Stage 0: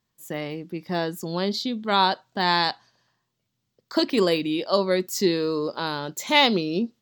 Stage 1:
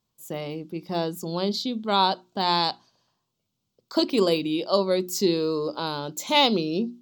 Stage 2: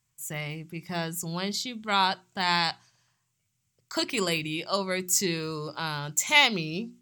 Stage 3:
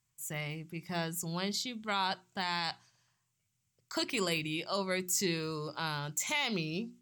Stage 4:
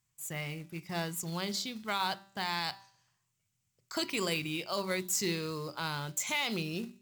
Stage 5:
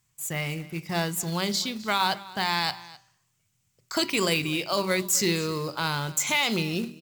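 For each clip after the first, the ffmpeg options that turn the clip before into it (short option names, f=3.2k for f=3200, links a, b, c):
-af "equalizer=f=1.8k:t=o:w=0.46:g=-13,bandreject=f=60:t=h:w=6,bandreject=f=120:t=h:w=6,bandreject=f=180:t=h:w=6,bandreject=f=240:t=h:w=6,bandreject=f=300:t=h:w=6,bandreject=f=360:t=h:w=6"
-af "equalizer=f=125:t=o:w=1:g=7,equalizer=f=250:t=o:w=1:g=-11,equalizer=f=500:t=o:w=1:g=-9,equalizer=f=1k:t=o:w=1:g=-4,equalizer=f=2k:t=o:w=1:g=11,equalizer=f=4k:t=o:w=1:g=-9,equalizer=f=8k:t=o:w=1:g=11,volume=1dB"
-af "alimiter=limit=-17dB:level=0:latency=1:release=32,volume=-4dB"
-af "bandreject=f=195.8:t=h:w=4,bandreject=f=391.6:t=h:w=4,bandreject=f=587.4:t=h:w=4,bandreject=f=783.2:t=h:w=4,bandreject=f=979:t=h:w=4,bandreject=f=1.1748k:t=h:w=4,bandreject=f=1.3706k:t=h:w=4,bandreject=f=1.5664k:t=h:w=4,bandreject=f=1.7622k:t=h:w=4,bandreject=f=1.958k:t=h:w=4,bandreject=f=2.1538k:t=h:w=4,bandreject=f=2.3496k:t=h:w=4,bandreject=f=2.5454k:t=h:w=4,bandreject=f=2.7412k:t=h:w=4,bandreject=f=2.937k:t=h:w=4,bandreject=f=3.1328k:t=h:w=4,bandreject=f=3.3286k:t=h:w=4,bandreject=f=3.5244k:t=h:w=4,bandreject=f=3.7202k:t=h:w=4,bandreject=f=3.916k:t=h:w=4,bandreject=f=4.1118k:t=h:w=4,bandreject=f=4.3076k:t=h:w=4,bandreject=f=4.5034k:t=h:w=4,bandreject=f=4.6992k:t=h:w=4,bandreject=f=4.895k:t=h:w=4,bandreject=f=5.0908k:t=h:w=4,bandreject=f=5.2866k:t=h:w=4,bandreject=f=5.4824k:t=h:w=4,bandreject=f=5.6782k:t=h:w=4,bandreject=f=5.874k:t=h:w=4,bandreject=f=6.0698k:t=h:w=4,bandreject=f=6.2656k:t=h:w=4,bandreject=f=6.4614k:t=h:w=4,acrusher=bits=4:mode=log:mix=0:aa=0.000001"
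-af "aecho=1:1:257:0.106,volume=8dB"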